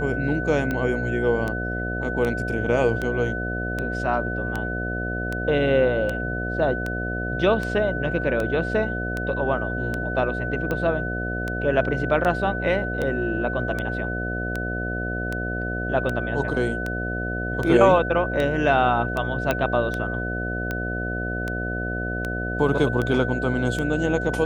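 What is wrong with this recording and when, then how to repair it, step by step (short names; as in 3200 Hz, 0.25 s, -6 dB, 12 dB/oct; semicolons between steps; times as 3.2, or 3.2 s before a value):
buzz 60 Hz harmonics 12 -29 dBFS
tick 78 rpm -14 dBFS
tone 1500 Hz -29 dBFS
19.51 pop -8 dBFS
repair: de-click; de-hum 60 Hz, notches 12; notch 1500 Hz, Q 30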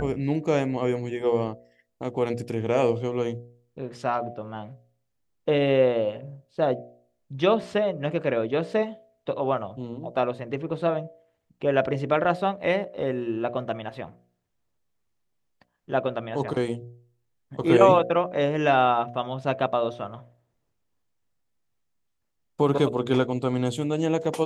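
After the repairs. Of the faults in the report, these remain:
none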